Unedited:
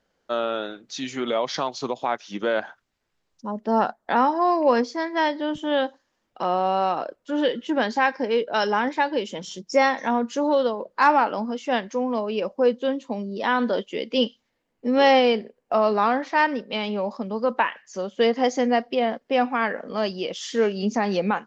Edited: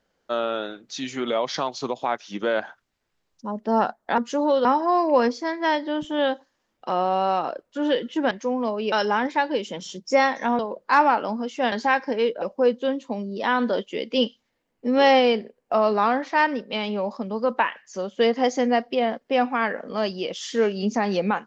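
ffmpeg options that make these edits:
-filter_complex "[0:a]asplit=8[a][b][c][d][e][f][g][h];[a]atrim=end=4.182[i];[b]atrim=start=10.208:end=10.682[j];[c]atrim=start=4.178:end=7.842[k];[d]atrim=start=11.808:end=12.422[l];[e]atrim=start=8.538:end=10.212[m];[f]atrim=start=10.678:end=11.812[n];[g]atrim=start=7.838:end=8.542[o];[h]atrim=start=12.418[p];[i][j]acrossfade=d=0.004:c1=hsin:c2=hsin[q];[q][k]acrossfade=d=0.004:c1=hsin:c2=hsin[r];[r][l]acrossfade=d=0.004:c1=hsin:c2=hsin[s];[s][m]acrossfade=d=0.004:c1=hsin:c2=hsin[t];[t][n]acrossfade=d=0.004:c1=hsin:c2=hsin[u];[u][o]acrossfade=d=0.004:c1=hsin:c2=hsin[v];[v][p]acrossfade=d=0.004:c1=hsin:c2=hsin"

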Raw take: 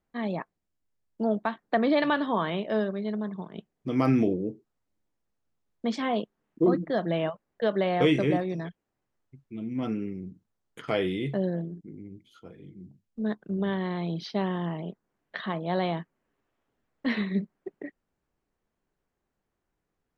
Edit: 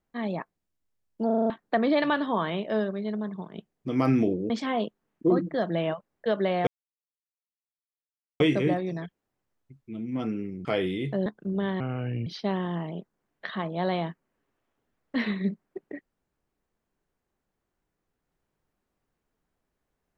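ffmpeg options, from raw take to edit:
-filter_complex "[0:a]asplit=13[a][b][c][d][e][f][g][h][i][j][k][l][m];[a]atrim=end=1.302[n];[b]atrim=start=1.258:end=1.302[o];[c]atrim=start=1.258:end=1.302[p];[d]atrim=start=1.258:end=1.302[q];[e]atrim=start=1.258:end=1.302[r];[f]atrim=start=1.258:end=1.302[s];[g]atrim=start=1.498:end=4.502[t];[h]atrim=start=5.858:end=8.03,asetpts=PTS-STARTPTS,afade=t=out:st=2.168:d=0.004:c=hsin,apad=pad_dur=1.73[u];[i]atrim=start=8.03:end=10.282,asetpts=PTS-STARTPTS,afade=t=in:d=0.004:c=hsin[v];[j]atrim=start=10.858:end=11.472[w];[k]atrim=start=13.298:end=13.844[x];[l]atrim=start=13.84:end=14.17,asetpts=PTS-STARTPTS,asetrate=31311,aresample=44100,atrim=end_sample=20497,asetpts=PTS-STARTPTS[y];[m]atrim=start=14.166[z];[n][o]acrossfade=d=0.004:c1=hsin:c2=hsin[aa];[aa][p]acrossfade=d=0.004:c1=hsin:c2=hsin[ab];[ab][q]acrossfade=d=0.004:c1=hsin:c2=hsin[ac];[ac][r]acrossfade=d=0.004:c1=hsin:c2=hsin[ad];[ad][s]acrossfade=d=0.004:c1=hsin:c2=hsin[ae];[ae][t]acrossfade=d=0.004:c1=hsin:c2=hsin[af];[u][v]concat=n=2:v=0:a=1[ag];[af][ag]acrossfade=d=0.004:c1=hsin:c2=hsin[ah];[ah][w]acrossfade=d=0.004:c1=hsin:c2=hsin[ai];[ai][x]acrossfade=d=0.004:c1=hsin:c2=hsin[aj];[aj][y]acrossfade=d=0.004:c1=hsin:c2=hsin[ak];[ak][z]acrossfade=d=0.004:c1=hsin:c2=hsin"

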